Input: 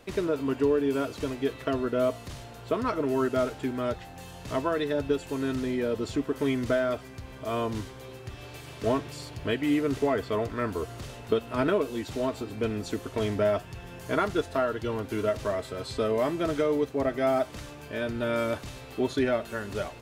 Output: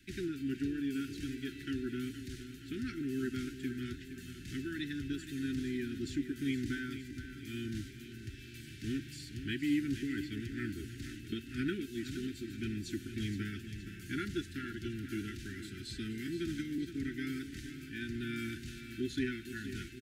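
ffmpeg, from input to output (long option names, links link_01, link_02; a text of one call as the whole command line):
ffmpeg -i in.wav -filter_complex "[0:a]asettb=1/sr,asplit=3[link_01][link_02][link_03];[link_01]atrim=end=16.274[link_04];[link_02]atrim=start=16.27:end=16.78,asetpts=PTS-STARTPTS,afade=type=in:duration=0.004:curve=qsin,afade=type=out:start_time=0.506:duration=0.004:curve=qsin,acrossover=split=420|3000[link_05][link_06][link_07];[link_06]acompressor=threshold=-31dB:ratio=6[link_08];[link_05][link_08][link_07]amix=inputs=3:normalize=0[link_09];[link_03]atrim=start=16.776[link_10];[link_04][link_09]acrossfade=duration=0.004:curve1=hsin:curve2=qsin[link_11];[link_11][link_10]acrossfade=duration=0.004:curve1=qsin:curve2=hsin,asuperstop=centerf=740:order=20:qfactor=0.67,aecho=1:1:469|938|1407|1876|2345|2814:0.282|0.155|0.0853|0.0469|0.0258|0.0142,volume=-6dB" out.wav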